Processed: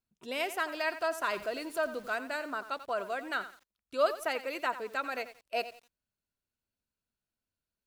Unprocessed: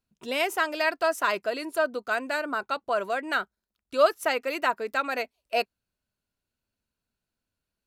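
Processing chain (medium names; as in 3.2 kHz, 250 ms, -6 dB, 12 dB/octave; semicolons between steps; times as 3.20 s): 1.31–2.18 s: jump at every zero crossing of -40 dBFS; bit-crushed delay 89 ms, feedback 35%, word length 7-bit, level -12.5 dB; trim -7 dB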